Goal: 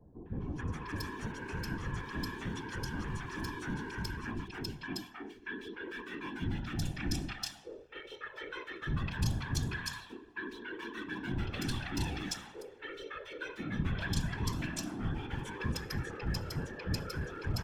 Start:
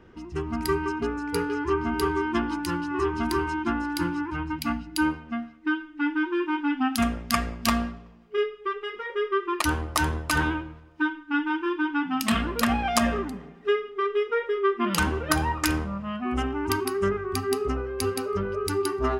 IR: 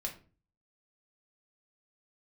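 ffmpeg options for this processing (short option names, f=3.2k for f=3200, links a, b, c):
-filter_complex "[0:a]acrossover=split=6500[a][b];[b]acompressor=threshold=-44dB:ratio=4:attack=1:release=60[c];[a][c]amix=inputs=2:normalize=0,aecho=1:1:1.3:0.67,acrossover=split=230|3000[d][e][f];[e]acompressor=threshold=-31dB:ratio=6[g];[d][g][f]amix=inputs=3:normalize=0,acrossover=split=240|1300|6300[h][i][j][k];[i]aeval=exprs='0.0188*(abs(mod(val(0)/0.0188+3,4)-2)-1)':c=same[l];[h][l][j][k]amix=inputs=4:normalize=0,afftfilt=real='hypot(re,im)*cos(2*PI*random(0))':imag='hypot(re,im)*sin(2*PI*random(1))':win_size=512:overlap=0.75,acrossover=split=670|2800[m][n][o];[n]adelay=280[p];[o]adelay=440[q];[m][p][q]amix=inputs=3:normalize=0,asetrate=48000,aresample=44100"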